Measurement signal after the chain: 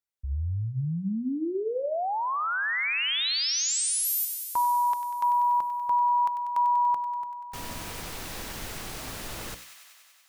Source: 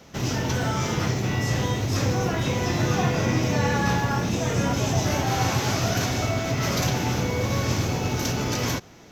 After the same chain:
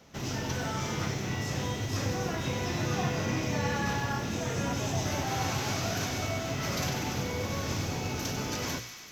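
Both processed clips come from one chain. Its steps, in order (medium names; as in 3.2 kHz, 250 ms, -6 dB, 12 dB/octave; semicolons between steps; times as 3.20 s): hum notches 60/120/180/240/300/360/420/480/540/600 Hz; feedback echo behind a high-pass 96 ms, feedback 77%, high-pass 1.6 kHz, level -8 dB; trim -7 dB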